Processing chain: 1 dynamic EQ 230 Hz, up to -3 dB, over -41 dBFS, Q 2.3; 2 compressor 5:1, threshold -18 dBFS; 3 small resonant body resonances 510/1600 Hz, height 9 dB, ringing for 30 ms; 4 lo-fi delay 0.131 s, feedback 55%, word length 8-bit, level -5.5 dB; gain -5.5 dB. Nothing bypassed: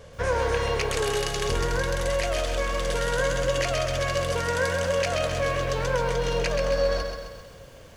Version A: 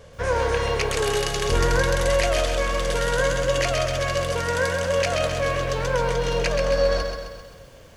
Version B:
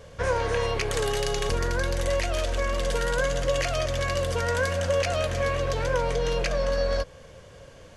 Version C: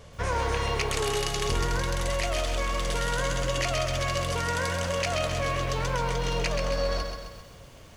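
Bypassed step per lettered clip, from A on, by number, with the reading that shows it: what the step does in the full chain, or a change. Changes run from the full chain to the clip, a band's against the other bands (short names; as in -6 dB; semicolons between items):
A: 2, mean gain reduction 2.5 dB; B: 4, 125 Hz band +2.0 dB; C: 3, 500 Hz band -5.0 dB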